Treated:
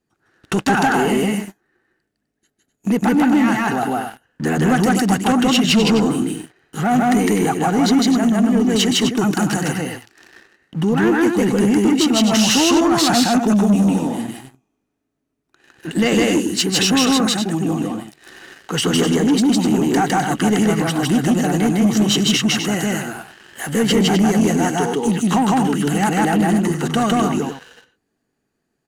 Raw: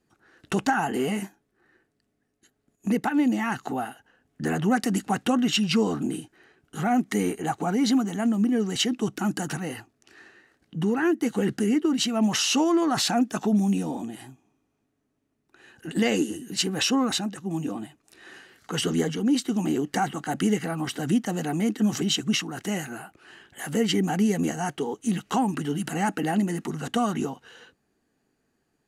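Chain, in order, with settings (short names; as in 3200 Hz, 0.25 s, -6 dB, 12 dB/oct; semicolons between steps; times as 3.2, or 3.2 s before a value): loudspeakers at several distances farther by 54 m 0 dB, 87 m -8 dB; sample leveller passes 2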